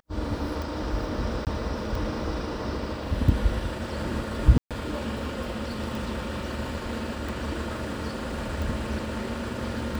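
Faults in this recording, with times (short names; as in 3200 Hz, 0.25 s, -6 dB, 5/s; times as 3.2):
tick 45 rpm
1.45–1.47 gap 18 ms
4.58–4.71 gap 0.127 s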